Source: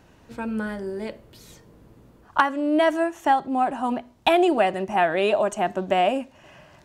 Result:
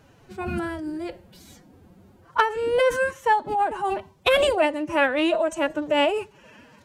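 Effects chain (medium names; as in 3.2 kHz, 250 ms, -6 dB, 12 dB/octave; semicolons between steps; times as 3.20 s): formant-preserving pitch shift +8 st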